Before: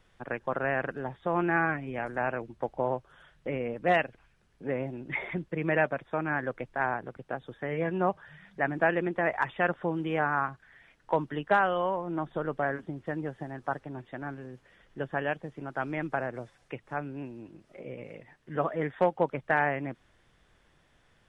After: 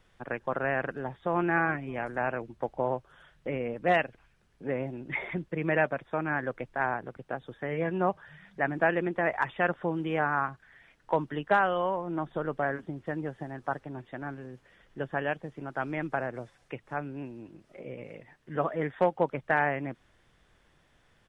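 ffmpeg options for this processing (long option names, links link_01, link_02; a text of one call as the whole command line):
ffmpeg -i in.wav -filter_complex "[0:a]asplit=2[link_01][link_02];[link_02]afade=type=in:start_time=1.01:duration=0.01,afade=type=out:start_time=1.44:duration=0.01,aecho=0:1:310|620|930:0.133352|0.0466733|0.0163356[link_03];[link_01][link_03]amix=inputs=2:normalize=0" out.wav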